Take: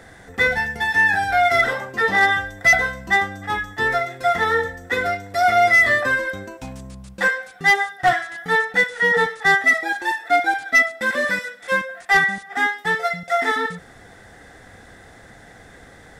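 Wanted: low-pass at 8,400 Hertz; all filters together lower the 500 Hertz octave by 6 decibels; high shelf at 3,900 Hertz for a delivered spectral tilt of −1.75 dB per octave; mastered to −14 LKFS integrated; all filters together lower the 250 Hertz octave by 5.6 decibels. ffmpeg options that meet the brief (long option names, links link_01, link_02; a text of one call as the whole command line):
ffmpeg -i in.wav -af "lowpass=8400,equalizer=frequency=250:width_type=o:gain=-5.5,equalizer=frequency=500:width_type=o:gain=-8,highshelf=frequency=3900:gain=5.5,volume=4.5dB" out.wav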